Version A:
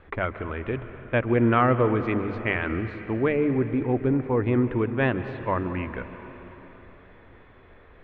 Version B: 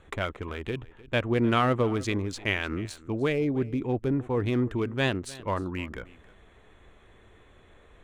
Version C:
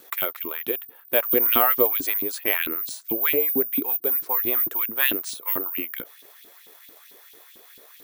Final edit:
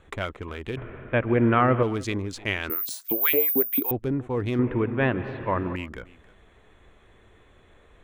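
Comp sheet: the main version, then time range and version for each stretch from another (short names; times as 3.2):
B
0.77–1.83 from A
2.7–3.91 from C
4.59–5.76 from A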